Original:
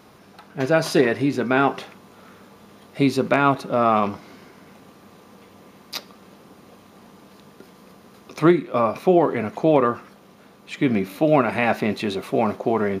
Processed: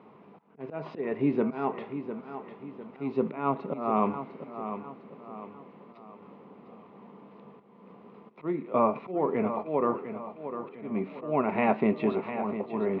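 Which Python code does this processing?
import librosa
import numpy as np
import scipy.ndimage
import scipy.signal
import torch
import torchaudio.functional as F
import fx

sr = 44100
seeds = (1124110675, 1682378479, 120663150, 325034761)

p1 = fx.auto_swell(x, sr, attack_ms=326.0)
p2 = fx.cabinet(p1, sr, low_hz=150.0, low_slope=12, high_hz=2500.0, hz=(150.0, 220.0, 430.0, 970.0, 1600.0), db=(4, 5, 6, 6, -10))
p3 = p2 + fx.echo_feedback(p2, sr, ms=702, feedback_pct=43, wet_db=-10, dry=0)
y = p3 * librosa.db_to_amplitude(-5.5)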